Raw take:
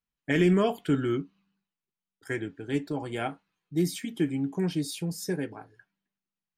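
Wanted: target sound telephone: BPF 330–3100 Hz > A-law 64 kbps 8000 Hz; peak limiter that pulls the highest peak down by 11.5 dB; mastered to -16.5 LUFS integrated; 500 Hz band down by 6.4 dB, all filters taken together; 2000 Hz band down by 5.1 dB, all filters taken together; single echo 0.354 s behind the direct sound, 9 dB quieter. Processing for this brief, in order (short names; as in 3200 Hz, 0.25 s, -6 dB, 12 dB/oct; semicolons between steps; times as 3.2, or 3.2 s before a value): bell 500 Hz -7 dB; bell 2000 Hz -5 dB; limiter -26.5 dBFS; BPF 330–3100 Hz; echo 0.354 s -9 dB; gain +25.5 dB; A-law 64 kbps 8000 Hz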